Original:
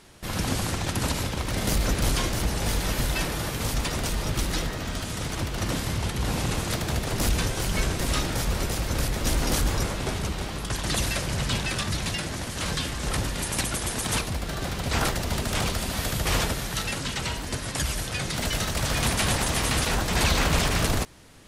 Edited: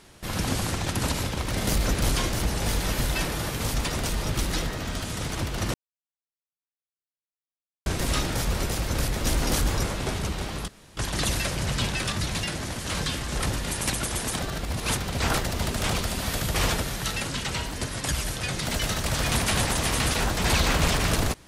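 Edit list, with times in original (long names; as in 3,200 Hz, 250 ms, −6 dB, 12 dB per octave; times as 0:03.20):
0:05.74–0:07.86: silence
0:10.68: splice in room tone 0.29 s
0:14.10–0:14.68: reverse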